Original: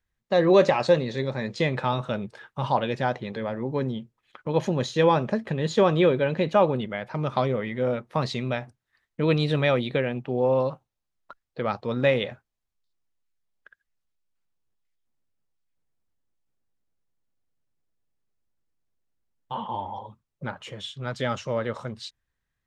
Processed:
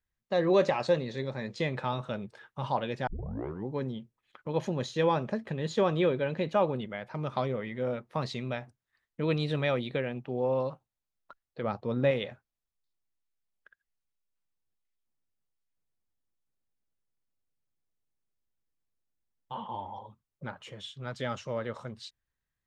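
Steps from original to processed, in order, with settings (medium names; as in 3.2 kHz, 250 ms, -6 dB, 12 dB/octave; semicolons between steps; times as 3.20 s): 3.07 s: tape start 0.61 s; 11.63–12.11 s: tilt shelf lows +4.5 dB; trim -6.5 dB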